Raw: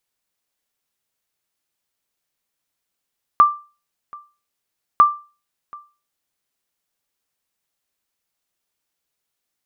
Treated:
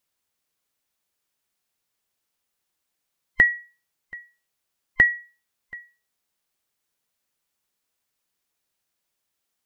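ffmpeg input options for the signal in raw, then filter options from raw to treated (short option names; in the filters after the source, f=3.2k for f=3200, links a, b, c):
-f lavfi -i "aevalsrc='0.668*(sin(2*PI*1180*mod(t,1.6))*exp(-6.91*mod(t,1.6)/0.33)+0.0531*sin(2*PI*1180*max(mod(t,1.6)-0.73,0))*exp(-6.91*max(mod(t,1.6)-0.73,0)/0.33))':d=3.2:s=44100"
-af "afftfilt=real='real(if(between(b,1,1008),(2*floor((b-1)/48)+1)*48-b,b),0)':imag='imag(if(between(b,1,1008),(2*floor((b-1)/48)+1)*48-b,b),0)*if(between(b,1,1008),-1,1)':win_size=2048:overlap=0.75,acompressor=threshold=-18dB:ratio=1.5"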